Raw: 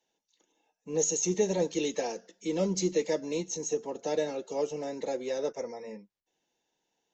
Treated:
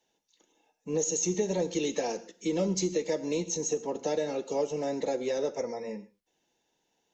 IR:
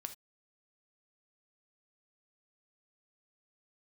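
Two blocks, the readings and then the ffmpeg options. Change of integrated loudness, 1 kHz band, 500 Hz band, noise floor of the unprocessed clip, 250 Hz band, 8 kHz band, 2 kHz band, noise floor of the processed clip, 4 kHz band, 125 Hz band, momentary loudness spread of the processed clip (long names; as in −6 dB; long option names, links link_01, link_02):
+0.5 dB, +1.5 dB, +0.5 dB, −84 dBFS, +1.0 dB, can't be measured, +0.5 dB, −78 dBFS, +0.5 dB, +1.0 dB, 7 LU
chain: -filter_complex "[0:a]acompressor=threshold=-30dB:ratio=4,asplit=2[link_01][link_02];[1:a]atrim=start_sample=2205,asetrate=26019,aresample=44100,lowshelf=frequency=270:gain=7[link_03];[link_02][link_03]afir=irnorm=-1:irlink=0,volume=-4.5dB[link_04];[link_01][link_04]amix=inputs=2:normalize=0"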